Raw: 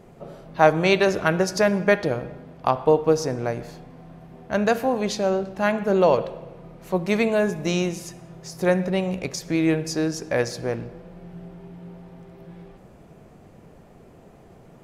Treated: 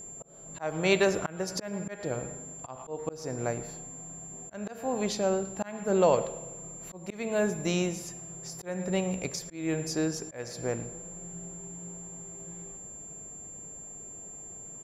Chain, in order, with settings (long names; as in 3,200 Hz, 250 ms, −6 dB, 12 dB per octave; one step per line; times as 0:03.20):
steady tone 7,300 Hz −37 dBFS
far-end echo of a speakerphone 110 ms, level −18 dB
volume swells 329 ms
level −5 dB